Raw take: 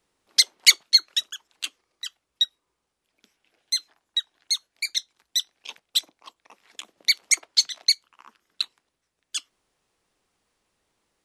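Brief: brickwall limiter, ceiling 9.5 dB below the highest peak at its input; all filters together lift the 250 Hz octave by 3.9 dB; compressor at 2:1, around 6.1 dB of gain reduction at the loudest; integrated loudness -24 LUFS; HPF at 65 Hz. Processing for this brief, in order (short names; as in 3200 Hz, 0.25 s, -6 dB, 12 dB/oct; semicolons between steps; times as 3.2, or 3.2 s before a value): HPF 65 Hz; bell 250 Hz +5.5 dB; compressor 2:1, threshold -21 dBFS; gain +7.5 dB; limiter -9.5 dBFS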